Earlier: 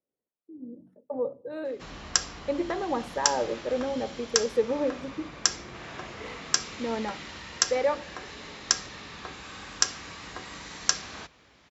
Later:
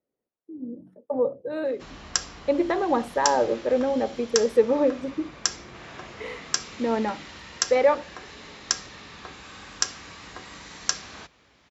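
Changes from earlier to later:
speech +7.5 dB; reverb: off

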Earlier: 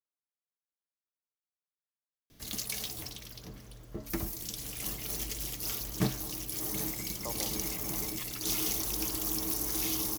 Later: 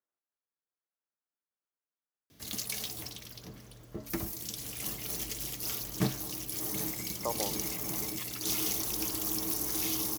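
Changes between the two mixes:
speech +7.5 dB; master: add high-pass 71 Hz 12 dB/octave

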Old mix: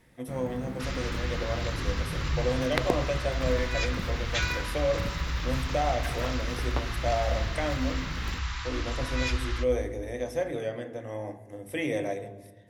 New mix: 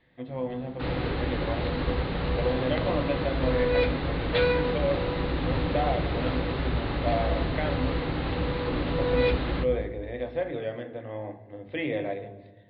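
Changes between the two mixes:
first sound -10.0 dB; second sound: remove inverse Chebyshev band-stop 200–480 Hz, stop band 60 dB; master: add steep low-pass 4.4 kHz 96 dB/octave

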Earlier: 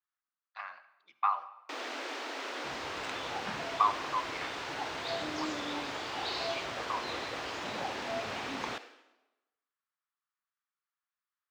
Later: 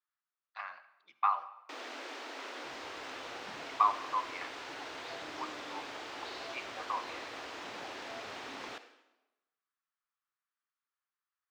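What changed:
first sound -5.0 dB; second sound -12.0 dB

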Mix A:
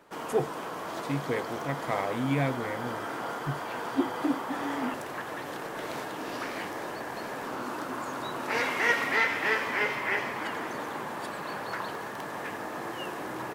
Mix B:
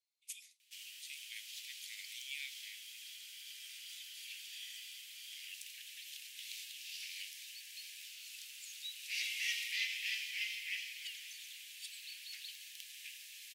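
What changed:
background: entry +0.60 s; master: add steep high-pass 2.5 kHz 48 dB/octave

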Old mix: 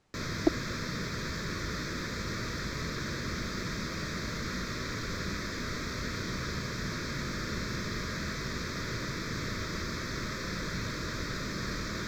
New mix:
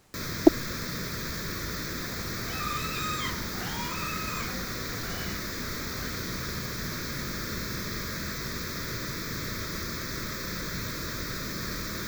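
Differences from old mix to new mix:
speech +9.0 dB; second sound: unmuted; master: remove distance through air 66 m

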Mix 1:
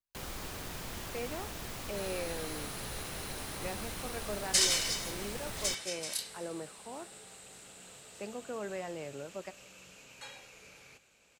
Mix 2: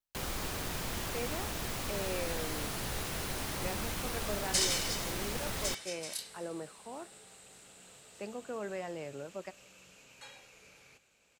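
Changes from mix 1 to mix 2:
first sound +4.5 dB; second sound -3.5 dB

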